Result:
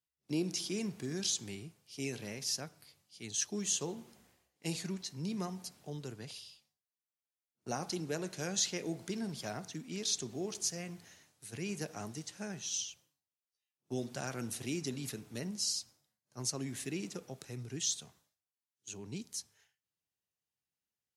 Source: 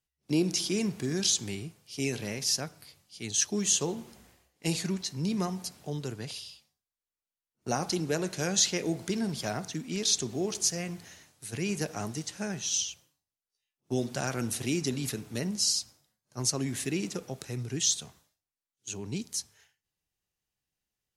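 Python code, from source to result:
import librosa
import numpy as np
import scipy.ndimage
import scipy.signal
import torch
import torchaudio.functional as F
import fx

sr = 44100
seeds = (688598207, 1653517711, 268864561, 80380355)

y = scipy.signal.sosfilt(scipy.signal.butter(2, 83.0, 'highpass', fs=sr, output='sos'), x)
y = F.gain(torch.from_numpy(y), -7.5).numpy()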